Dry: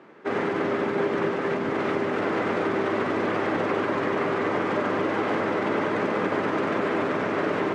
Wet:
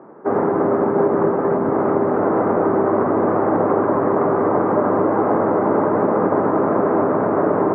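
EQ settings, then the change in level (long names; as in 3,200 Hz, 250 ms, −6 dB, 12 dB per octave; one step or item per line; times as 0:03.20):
low-pass filter 1,200 Hz 24 dB per octave
parametric band 750 Hz +2.5 dB
+8.0 dB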